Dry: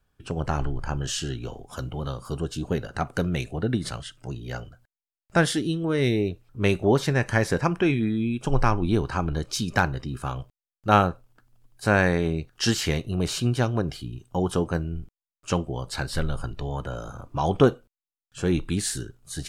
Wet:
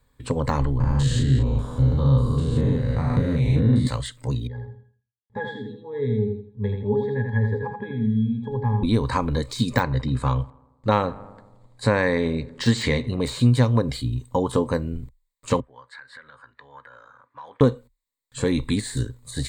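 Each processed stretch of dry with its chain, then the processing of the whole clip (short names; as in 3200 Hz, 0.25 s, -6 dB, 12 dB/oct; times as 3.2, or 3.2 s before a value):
0.8–3.87 stepped spectrum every 0.2 s + tone controls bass +9 dB, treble -7 dB + doubler 37 ms -4 dB
4.47–8.83 LPF 5500 Hz + octave resonator G#, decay 0.17 s + feedback echo 82 ms, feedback 30%, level -5 dB
9.83–13.24 air absorption 63 m + darkening echo 82 ms, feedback 64%, low-pass 2100 Hz, level -21.5 dB
15.6–17.61 band-pass 1600 Hz, Q 5.7 + compressor 4:1, threshold -44 dBFS
whole clip: compressor 2.5:1, threshold -24 dBFS; ripple EQ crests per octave 1, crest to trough 12 dB; de-esser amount 80%; gain +5.5 dB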